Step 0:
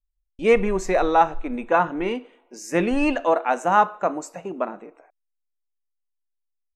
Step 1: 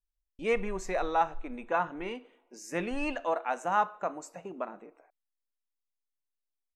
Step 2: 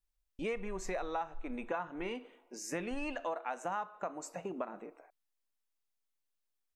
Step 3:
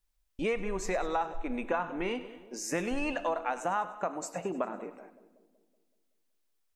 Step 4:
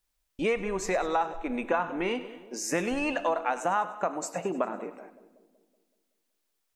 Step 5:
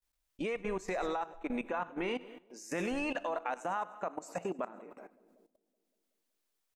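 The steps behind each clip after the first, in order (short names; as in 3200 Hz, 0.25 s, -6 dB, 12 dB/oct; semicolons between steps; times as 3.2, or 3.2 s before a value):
dynamic EQ 290 Hz, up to -5 dB, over -31 dBFS, Q 0.73; gain -8.5 dB
compressor 6:1, threshold -37 dBFS, peak gain reduction 15.5 dB; gain +2.5 dB
split-band echo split 620 Hz, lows 0.188 s, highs 0.1 s, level -15 dB; gain +6 dB
low shelf 75 Hz -10.5 dB; gain +4 dB
level quantiser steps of 16 dB; gain -2 dB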